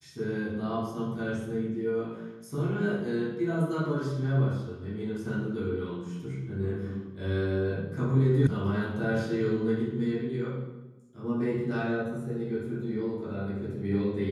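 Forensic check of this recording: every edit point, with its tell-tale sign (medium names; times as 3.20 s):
8.47 s: sound stops dead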